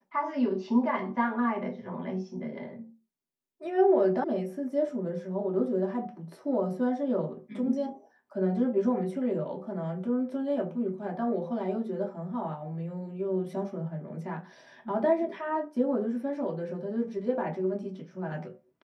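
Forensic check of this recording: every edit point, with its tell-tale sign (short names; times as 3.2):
4.24 sound cut off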